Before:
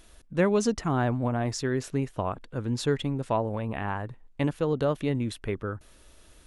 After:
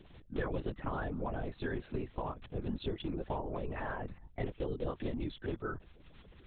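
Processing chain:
spectral magnitudes quantised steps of 30 dB
downward compressor, threshold −31 dBFS, peak gain reduction 12 dB
linear-prediction vocoder at 8 kHz whisper
level −2 dB

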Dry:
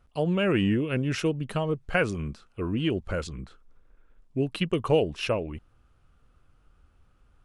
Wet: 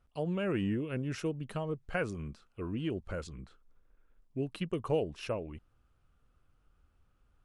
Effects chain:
dynamic equaliser 3,000 Hz, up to −5 dB, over −43 dBFS, Q 1.1
level −8 dB

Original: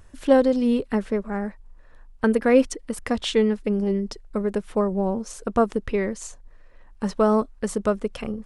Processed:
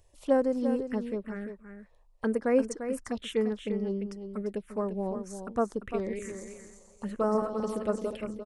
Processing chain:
0:05.81–0:08.15: feedback delay that plays each chunk backwards 128 ms, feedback 63%, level −5.5 dB
phaser swept by the level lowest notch 220 Hz, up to 3,600 Hz, full sweep at −16.5 dBFS
low-shelf EQ 120 Hz −7.5 dB
single-tap delay 346 ms −9 dB
level −7 dB

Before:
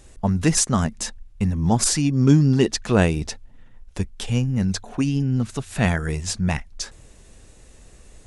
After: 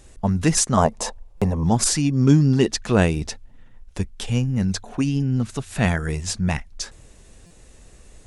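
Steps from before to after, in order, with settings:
0:00.77–0:01.64: flat-topped bell 670 Hz +14.5 dB
buffer that repeats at 0:01.37/0:07.46, samples 256, times 7

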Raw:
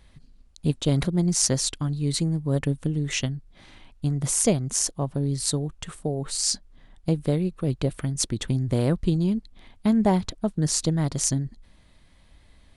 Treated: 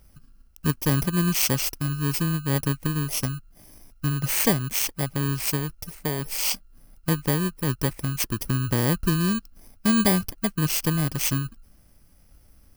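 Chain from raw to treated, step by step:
samples in bit-reversed order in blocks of 32 samples
0:09.09–0:10.08: dynamic equaliser 4,700 Hz, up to +4 dB, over −48 dBFS, Q 0.97

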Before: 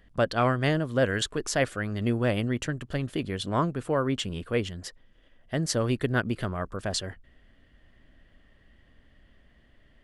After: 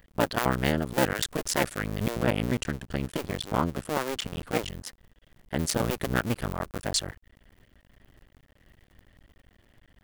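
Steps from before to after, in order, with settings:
sub-harmonics by changed cycles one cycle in 2, muted
high-shelf EQ 9,900 Hz +11 dB, from 0:02.09 +5.5 dB, from 0:04.63 +10.5 dB
level +2 dB

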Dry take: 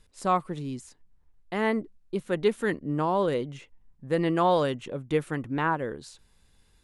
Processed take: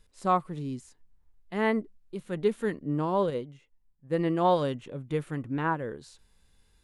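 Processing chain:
harmonic and percussive parts rebalanced percussive −8 dB
0:03.30–0:04.45: expander for the loud parts 1.5 to 1, over −44 dBFS

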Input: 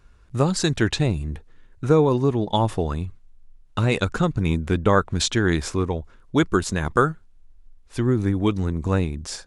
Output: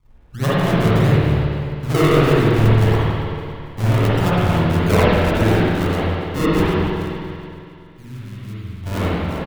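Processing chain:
multiband delay without the direct sound lows, highs 30 ms, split 320 Hz
sample-and-hold swept by an LFO 38×, swing 100% 1.6 Hz
0:06.74–0:08.83: guitar amp tone stack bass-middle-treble 6-0-2
on a send: repeating echo 282 ms, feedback 53%, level −17 dB
on the sum: spring reverb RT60 2.3 s, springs 46/55 ms, chirp 50 ms, DRR −9.5 dB
level −3.5 dB

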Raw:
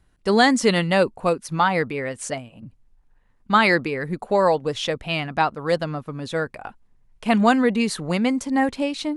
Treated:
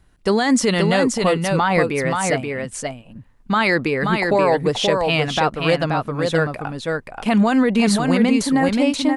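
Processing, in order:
brickwall limiter −14 dBFS, peak gain reduction 11.5 dB
on a send: single-tap delay 529 ms −4 dB
on the sum: level +5.5 dB

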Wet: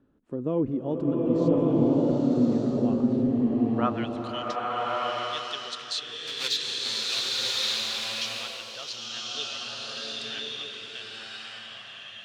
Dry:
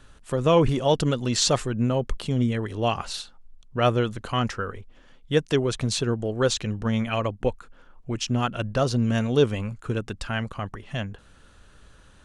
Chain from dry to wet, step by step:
0:06.27–0:07.20: each half-wave held at its own peak
band-pass filter sweep 280 Hz → 3,900 Hz, 0:03.52–0:04.17
slow-attack reverb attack 1,200 ms, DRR −6.5 dB

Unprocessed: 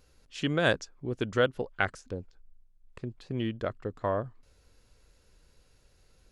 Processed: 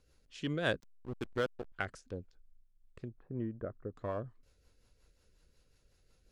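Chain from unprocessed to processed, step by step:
in parallel at −10.5 dB: hard clipping −26.5 dBFS, distortion −7 dB
on the sum: rotating-speaker cabinet horn 5.5 Hz
0:00.80–0:01.72: slack as between gear wheels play −26 dBFS
0:03.08–0:03.97: low-pass filter 1,500 Hz 24 dB per octave
level −7 dB

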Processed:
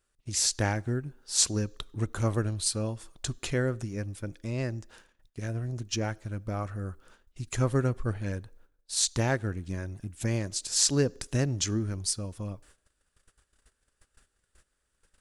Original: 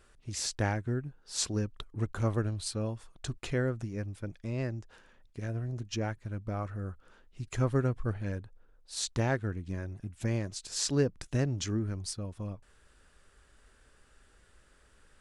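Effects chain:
noise gate −57 dBFS, range −19 dB
high-shelf EQ 4,900 Hz +10.5 dB
on a send: four-pole ladder high-pass 290 Hz, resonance 40% + convolution reverb RT60 0.80 s, pre-delay 3 ms, DRR 23.5 dB
on the sum: level +2 dB

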